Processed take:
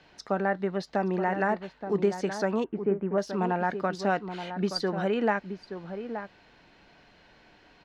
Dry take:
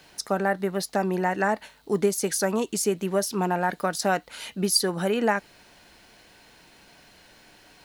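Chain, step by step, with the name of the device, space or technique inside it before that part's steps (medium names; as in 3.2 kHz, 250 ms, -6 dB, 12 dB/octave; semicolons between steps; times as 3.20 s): shout across a valley (distance through air 190 m; echo from a far wall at 150 m, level -9 dB); 2.64–3.18 s: low-pass 1.8 kHz 24 dB/octave; trim -2 dB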